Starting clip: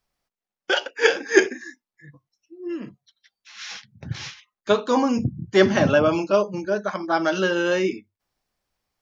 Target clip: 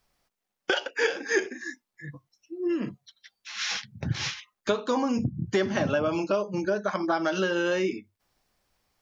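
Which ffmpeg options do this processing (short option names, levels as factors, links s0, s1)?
-af "acompressor=threshold=0.0316:ratio=5,volume=2"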